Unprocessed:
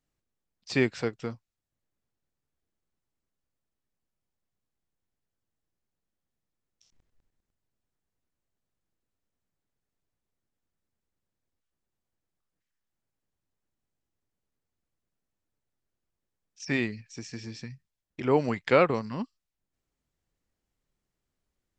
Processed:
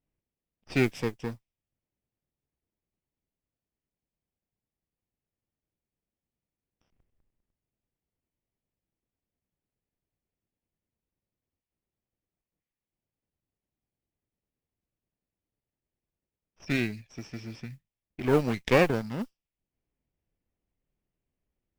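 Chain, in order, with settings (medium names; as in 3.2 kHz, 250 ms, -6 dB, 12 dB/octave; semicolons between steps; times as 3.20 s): comb filter that takes the minimum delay 0.37 ms; level-controlled noise filter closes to 2.1 kHz, open at -27.5 dBFS; modulation noise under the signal 29 dB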